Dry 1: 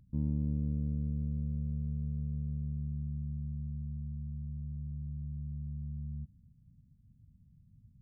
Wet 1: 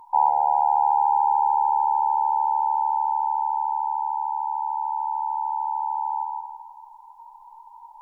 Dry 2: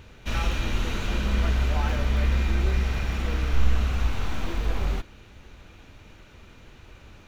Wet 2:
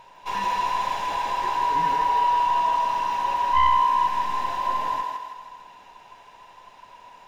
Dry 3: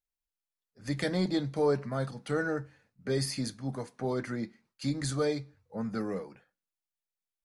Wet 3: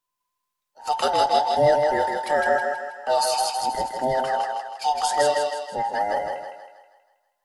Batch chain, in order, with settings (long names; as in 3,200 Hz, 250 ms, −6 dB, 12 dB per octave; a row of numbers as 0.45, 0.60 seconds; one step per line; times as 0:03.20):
frequency inversion band by band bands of 1,000 Hz
on a send: feedback echo with a high-pass in the loop 160 ms, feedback 49%, high-pass 350 Hz, level −3 dB
on the sum: sine wavefolder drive 4 dB, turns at −3 dBFS
loudness normalisation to −23 LKFS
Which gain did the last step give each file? +5.5, −10.5, +0.5 decibels